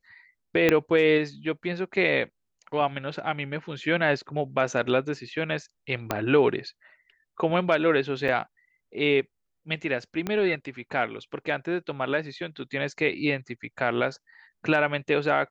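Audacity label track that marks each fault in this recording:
0.690000	0.690000	pop -7 dBFS
6.110000	6.110000	pop -10 dBFS
8.280000	8.290000	dropout 5 ms
10.270000	10.270000	pop -15 dBFS

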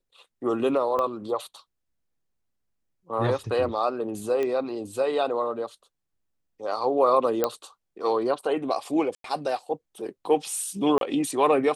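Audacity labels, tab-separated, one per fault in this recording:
0.990000	0.990000	pop -16 dBFS
4.430000	4.430000	pop -17 dBFS
7.440000	7.440000	pop -9 dBFS
9.150000	9.240000	dropout 93 ms
10.980000	11.010000	dropout 32 ms

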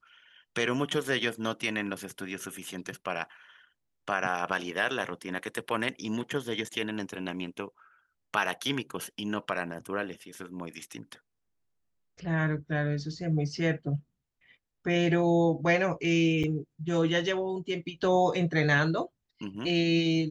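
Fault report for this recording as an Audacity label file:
16.430000	16.440000	dropout 6.7 ms

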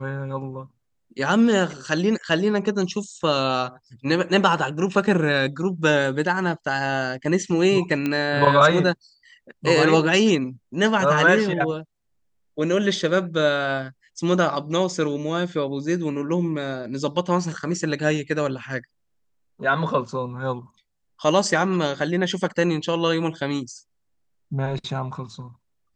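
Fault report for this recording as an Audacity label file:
8.060000	8.060000	pop -12 dBFS

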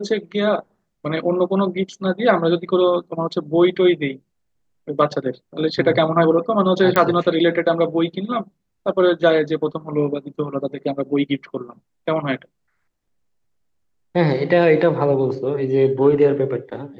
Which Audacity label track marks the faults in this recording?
6.960000	6.960000	pop -4 dBFS

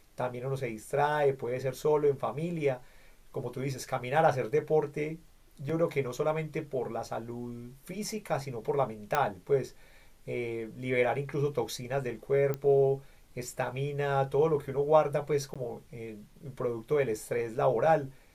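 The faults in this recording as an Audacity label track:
5.690000	5.690000	dropout 4.8 ms
9.150000	9.150000	pop -13 dBFS
12.540000	12.540000	pop -20 dBFS
15.540000	15.560000	dropout 16 ms

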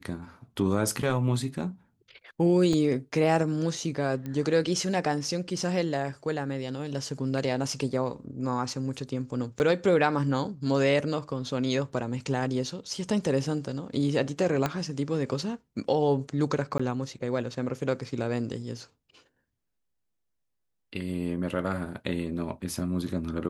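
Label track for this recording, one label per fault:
2.730000	2.730000	dropout 3.4 ms
4.260000	4.260000	pop -23 dBFS
9.590000	9.600000	dropout 9.7 ms
14.660000	14.660000	pop -12 dBFS
16.780000	16.800000	dropout 15 ms

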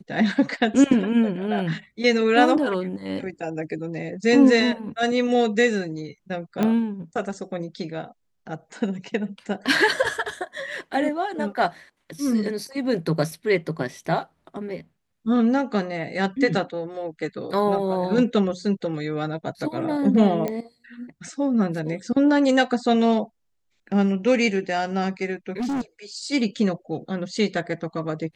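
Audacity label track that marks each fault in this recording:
6.630000	6.630000	pop -11 dBFS
20.480000	20.480000	pop -14 dBFS
25.580000	25.810000	clipped -23 dBFS

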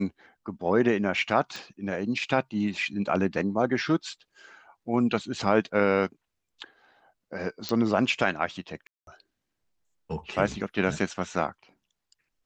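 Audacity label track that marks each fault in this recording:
1.560000	1.560000	pop
7.690000	7.690000	pop -14 dBFS
8.870000	9.070000	dropout 202 ms

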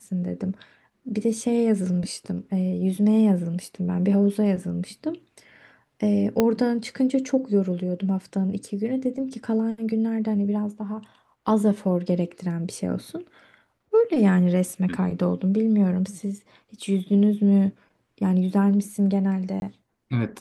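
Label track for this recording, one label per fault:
6.400000	6.400000	pop -7 dBFS
19.600000	19.620000	dropout 21 ms

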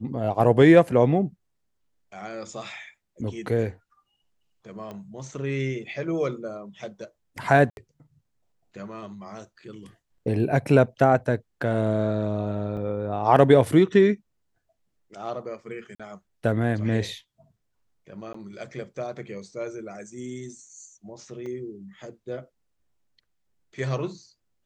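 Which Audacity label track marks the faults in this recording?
4.910000	4.910000	pop -25 dBFS
7.700000	7.770000	dropout 71 ms
12.770000	12.770000	dropout 3.4 ms
15.950000	16.000000	dropout 46 ms
18.330000	18.340000	dropout 14 ms
21.460000	21.460000	dropout 3.3 ms

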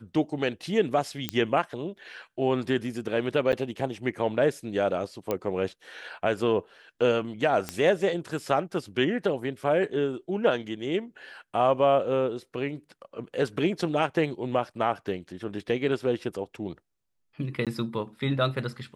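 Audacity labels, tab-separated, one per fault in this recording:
1.290000	1.290000	pop -11 dBFS
3.520000	3.530000	dropout 9.3 ms
5.310000	5.310000	pop -14 dBFS
7.690000	7.690000	pop -14 dBFS
17.650000	17.670000	dropout 17 ms

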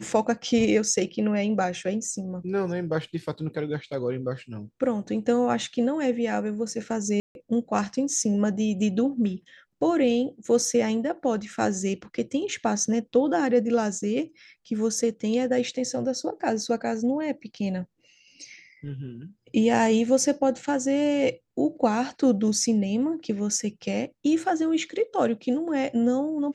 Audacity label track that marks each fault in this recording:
7.200000	7.350000	dropout 151 ms

